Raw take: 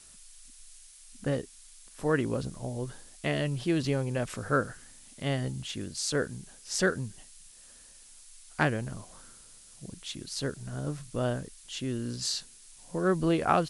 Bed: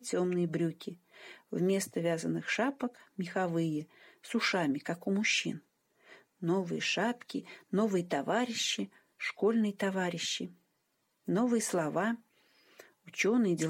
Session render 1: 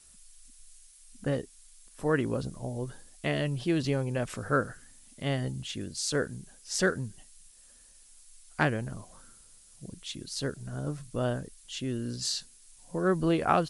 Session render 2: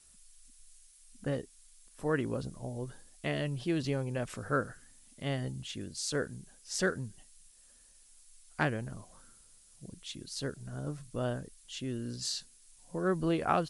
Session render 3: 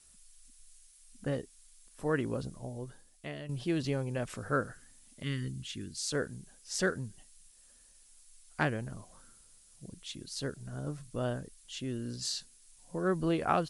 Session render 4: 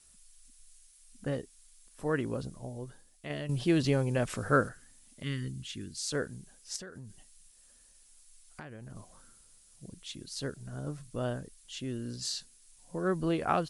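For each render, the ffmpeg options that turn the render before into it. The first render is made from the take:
ffmpeg -i in.wav -af "afftdn=noise_reduction=6:noise_floor=-54" out.wav
ffmpeg -i in.wav -af "volume=-4dB" out.wav
ffmpeg -i in.wav -filter_complex "[0:a]asettb=1/sr,asplit=3[link_01][link_02][link_03];[link_01]atrim=end=5.234[link_04];[link_02]atrim=start=5.23:end=6.02,asetpts=PTS-STARTPTS,afade=type=in:duration=0.004:curve=qsin,afade=type=out:start_time=0.786:duration=0.004:curve=qsin,asuperstop=centerf=690:order=4:qfactor=0.82[link_05];[link_03]atrim=start=6.016[link_06];[link_04][link_05]acrossfade=duration=0.004:curve1=hsin:curve2=qsin[link_07];[link_07][link_06]acrossfade=duration=0.004:curve1=qsin:curve2=hsin,asplit=2[link_08][link_09];[link_08]atrim=end=3.49,asetpts=PTS-STARTPTS,afade=type=out:start_time=2.42:duration=1.07:silence=0.281838[link_10];[link_09]atrim=start=3.49,asetpts=PTS-STARTPTS,afade=type=in:duration=0.004:curve=hsin:silence=0.281838[link_11];[link_10][link_11]concat=n=2:v=0:a=1" out.wav
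ffmpeg -i in.wav -filter_complex "[0:a]asettb=1/sr,asplit=3[link_01][link_02][link_03];[link_01]atrim=end=3.304[link_04];[link_02]atrim=start=3.3:end=4.69,asetpts=PTS-STARTPTS,afade=type=in:duration=0.004:curve=qsin,afade=type=out:start_time=1.386:duration=0.004:curve=qsin,acontrast=33[link_05];[link_03]atrim=start=4.686[link_06];[link_04][link_05]acrossfade=duration=0.004:curve1=hsin:curve2=qsin[link_07];[link_07][link_06]acrossfade=duration=0.004:curve1=qsin:curve2=hsin,asettb=1/sr,asplit=3[link_08][link_09][link_10];[link_08]atrim=end=6.764[link_11];[link_09]atrim=start=6.76:end=8.96,asetpts=PTS-STARTPTS,afade=type=in:duration=0.004:curve=qsin,afade=type=out:start_time=2.196:duration=0.004:curve=qsin,acompressor=threshold=-41dB:ratio=12:attack=3.2:release=140:knee=1:detection=peak[link_12];[link_10]atrim=start=8.956[link_13];[link_11][link_12]acrossfade=duration=0.004:curve1=hsin:curve2=qsin[link_14];[link_14][link_13]acrossfade=duration=0.004:curve1=qsin:curve2=hsin" out.wav

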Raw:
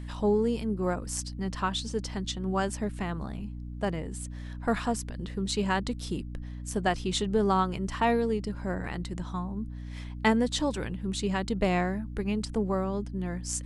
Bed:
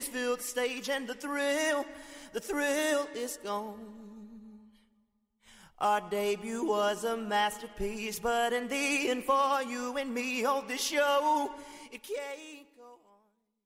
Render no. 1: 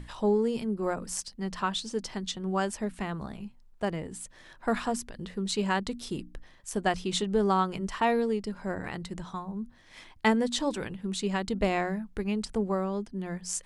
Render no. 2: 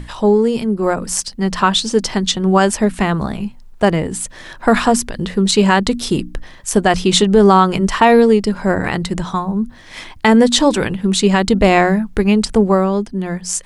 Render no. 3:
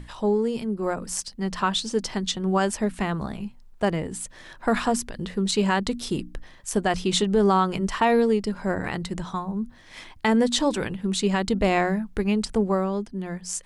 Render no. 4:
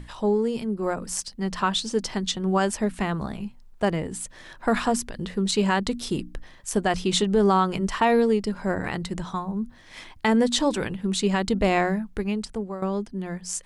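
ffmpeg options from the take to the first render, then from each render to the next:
ffmpeg -i in.wav -af "bandreject=frequency=60:width_type=h:width=6,bandreject=frequency=120:width_type=h:width=6,bandreject=frequency=180:width_type=h:width=6,bandreject=frequency=240:width_type=h:width=6,bandreject=frequency=300:width_type=h:width=6" out.wav
ffmpeg -i in.wav -af "dynaudnorm=framelen=290:gausssize=9:maxgain=5dB,alimiter=level_in=12.5dB:limit=-1dB:release=50:level=0:latency=1" out.wav
ffmpeg -i in.wav -af "volume=-10dB" out.wav
ffmpeg -i in.wav -filter_complex "[0:a]asplit=2[link_01][link_02];[link_01]atrim=end=12.82,asetpts=PTS-STARTPTS,afade=type=out:start_time=11.86:duration=0.96:silence=0.237137[link_03];[link_02]atrim=start=12.82,asetpts=PTS-STARTPTS,afade=type=in:duration=0.004:curve=hsin:silence=0.237137[link_04];[link_03][link_04]concat=n=2:v=0:a=1" out.wav

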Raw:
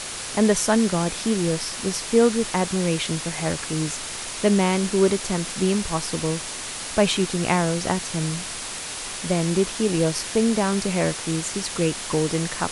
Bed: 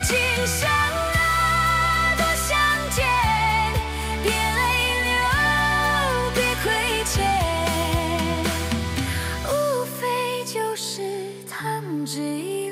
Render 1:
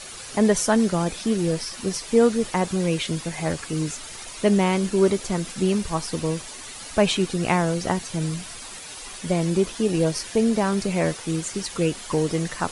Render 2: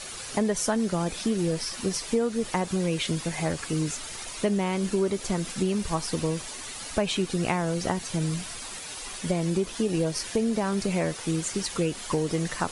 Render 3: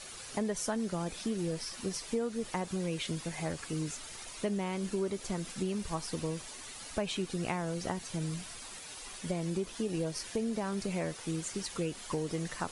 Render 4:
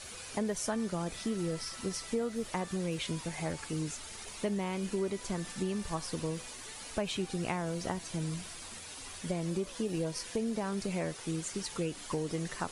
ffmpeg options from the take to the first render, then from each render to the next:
ffmpeg -i in.wav -af "afftdn=noise_reduction=10:noise_floor=-33" out.wav
ffmpeg -i in.wav -af "acompressor=threshold=-22dB:ratio=5" out.wav
ffmpeg -i in.wav -af "volume=-8dB" out.wav
ffmpeg -i in.wav -i bed.wav -filter_complex "[1:a]volume=-34dB[link_01];[0:a][link_01]amix=inputs=2:normalize=0" out.wav

